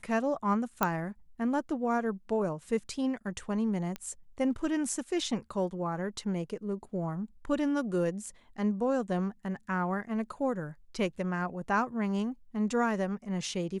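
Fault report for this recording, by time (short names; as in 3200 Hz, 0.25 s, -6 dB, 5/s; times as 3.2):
0.83 pop -11 dBFS
3.96 pop -22 dBFS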